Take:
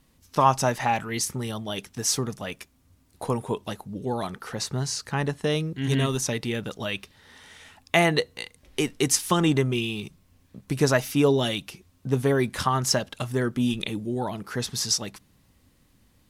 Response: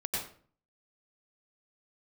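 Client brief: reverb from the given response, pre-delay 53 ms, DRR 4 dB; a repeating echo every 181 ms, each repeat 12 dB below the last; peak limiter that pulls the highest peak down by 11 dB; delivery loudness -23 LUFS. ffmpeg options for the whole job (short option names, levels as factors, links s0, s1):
-filter_complex "[0:a]alimiter=limit=0.133:level=0:latency=1,aecho=1:1:181|362|543:0.251|0.0628|0.0157,asplit=2[s0][s1];[1:a]atrim=start_sample=2205,adelay=53[s2];[s1][s2]afir=irnorm=-1:irlink=0,volume=0.355[s3];[s0][s3]amix=inputs=2:normalize=0,volume=1.68"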